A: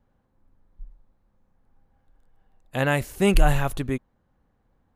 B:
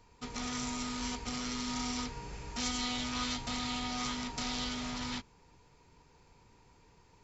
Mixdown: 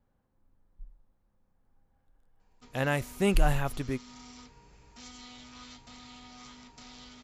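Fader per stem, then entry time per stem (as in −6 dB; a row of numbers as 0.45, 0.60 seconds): −6.0, −13.5 decibels; 0.00, 2.40 seconds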